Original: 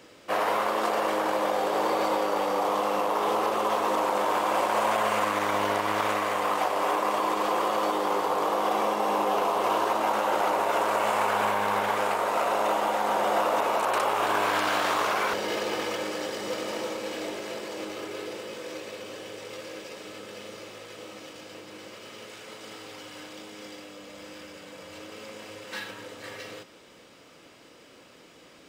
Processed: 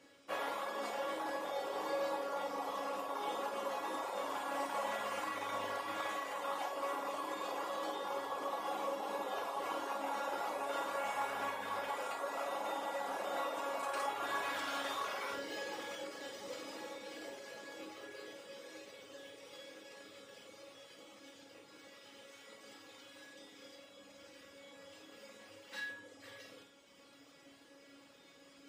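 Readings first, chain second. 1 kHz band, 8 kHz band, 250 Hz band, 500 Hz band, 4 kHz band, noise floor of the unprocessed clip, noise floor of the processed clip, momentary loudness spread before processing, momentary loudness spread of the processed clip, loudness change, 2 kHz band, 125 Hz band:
−14.0 dB, −12.0 dB, −14.5 dB, −13.5 dB, −11.5 dB, −53 dBFS, −61 dBFS, 18 LU, 17 LU, −13.5 dB, −12.0 dB, −18.5 dB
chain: high-pass filter 47 Hz 12 dB per octave
reverb reduction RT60 1.2 s
reversed playback
upward compression, threshold −44 dBFS
reversed playback
tuned comb filter 280 Hz, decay 0.37 s, harmonics all, mix 90%
on a send: flutter between parallel walls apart 8.7 metres, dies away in 0.44 s
on the sum: level +3 dB
MP3 56 kbit/s 44,100 Hz

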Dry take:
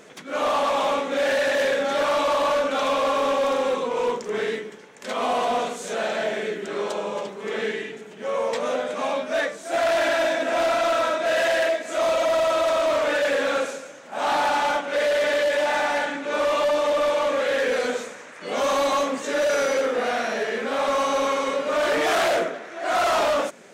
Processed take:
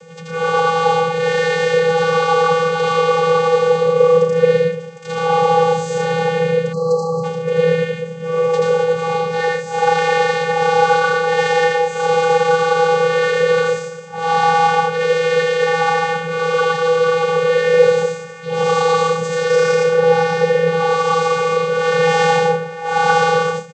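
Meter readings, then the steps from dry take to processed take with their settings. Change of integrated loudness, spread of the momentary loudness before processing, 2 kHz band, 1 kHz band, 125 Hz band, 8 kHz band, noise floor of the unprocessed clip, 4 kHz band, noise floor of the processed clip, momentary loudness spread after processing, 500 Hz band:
+7.5 dB, 8 LU, +6.5 dB, +8.0 dB, can't be measured, +3.0 dB, −42 dBFS, +4.0 dB, −30 dBFS, 6 LU, +8.0 dB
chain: high-shelf EQ 4,000 Hz +9 dB
on a send: loudspeakers that aren't time-aligned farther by 28 metres −1 dB, 39 metres −4 dB, 51 metres −9 dB
on the sum: channel vocoder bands 16, square 164 Hz
time-frequency box erased 0:06.73–0:07.24, 1,400–3,900 Hz
level +4.5 dB

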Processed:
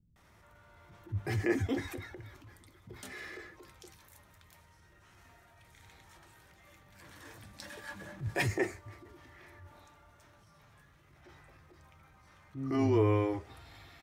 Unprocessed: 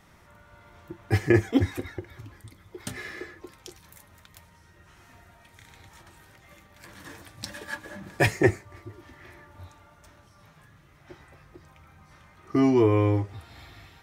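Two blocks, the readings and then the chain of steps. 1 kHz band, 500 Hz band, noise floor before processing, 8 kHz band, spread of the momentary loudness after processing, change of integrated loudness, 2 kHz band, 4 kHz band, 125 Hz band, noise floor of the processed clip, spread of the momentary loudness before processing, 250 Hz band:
−6.5 dB, −7.5 dB, −57 dBFS, −7.0 dB, 24 LU, −8.5 dB, −8.0 dB, −7.0 dB, −7.5 dB, −63 dBFS, 22 LU, −9.0 dB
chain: multiband delay without the direct sound lows, highs 160 ms, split 210 Hz
transient designer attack −7 dB, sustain +2 dB
level −5.5 dB

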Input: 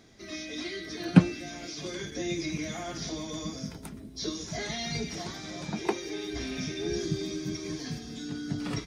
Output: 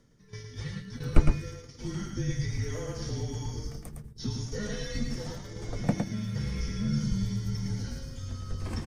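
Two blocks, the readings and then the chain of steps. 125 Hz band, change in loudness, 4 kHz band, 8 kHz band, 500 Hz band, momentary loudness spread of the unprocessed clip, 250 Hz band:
+3.0 dB, −1.0 dB, −6.5 dB, −4.0 dB, −4.0 dB, 7 LU, −3.5 dB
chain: bass and treble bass +13 dB, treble +5 dB
noise gate −33 dBFS, range −16 dB
reversed playback
upward compression, threshold −35 dBFS
reversed playback
octave-band graphic EQ 125/500/4,000 Hz −12/+9/−9 dB
on a send: single-tap delay 110 ms −4.5 dB
on the sum: frequency shifter −200 Hz
level −4 dB

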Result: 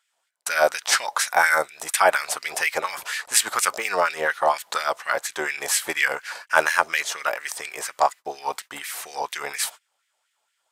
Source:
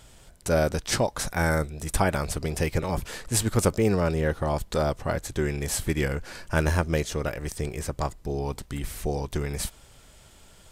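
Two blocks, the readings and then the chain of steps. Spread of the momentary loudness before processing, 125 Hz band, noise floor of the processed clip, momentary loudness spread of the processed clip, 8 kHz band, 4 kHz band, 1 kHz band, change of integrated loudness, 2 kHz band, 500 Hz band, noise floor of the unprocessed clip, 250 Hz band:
8 LU, −28.0 dB, −75 dBFS, 12 LU, +7.0 dB, +7.5 dB, +9.5 dB, +4.0 dB, +11.0 dB, +0.5 dB, −53 dBFS, −14.5 dB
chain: noise gate −39 dBFS, range −26 dB
auto-filter high-pass sine 4.2 Hz 710–2,100 Hz
level +6.5 dB

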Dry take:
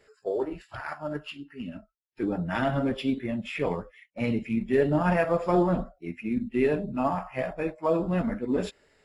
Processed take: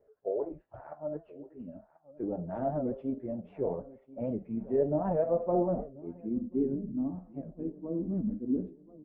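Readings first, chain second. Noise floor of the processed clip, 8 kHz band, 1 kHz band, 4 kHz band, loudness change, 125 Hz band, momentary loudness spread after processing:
−66 dBFS, can't be measured, −9.0 dB, below −35 dB, −5.0 dB, −7.5 dB, 16 LU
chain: variable-slope delta modulation 64 kbit/s
on a send: repeating echo 1,038 ms, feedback 47%, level −19 dB
on the sum: low-pass filter sweep 610 Hz → 290 Hz, 0:05.78–0:06.61
wow of a warped record 78 rpm, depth 160 cents
level −8.5 dB

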